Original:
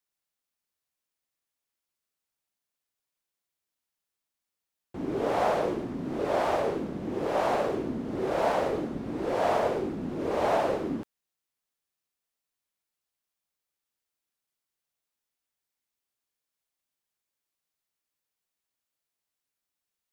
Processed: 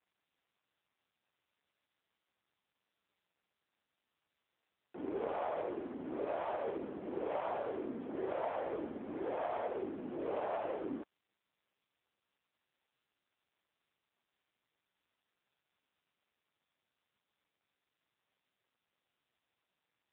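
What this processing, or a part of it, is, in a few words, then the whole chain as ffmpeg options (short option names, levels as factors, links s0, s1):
voicemail: -af "adynamicequalizer=threshold=0.00178:dfrequency=7700:dqfactor=0.86:tfrequency=7700:tqfactor=0.86:attack=5:release=100:ratio=0.375:range=2:mode=boostabove:tftype=bell,highpass=330,lowpass=3000,acompressor=threshold=0.0355:ratio=6,volume=0.668" -ar 8000 -c:a libopencore_amrnb -b:a 6700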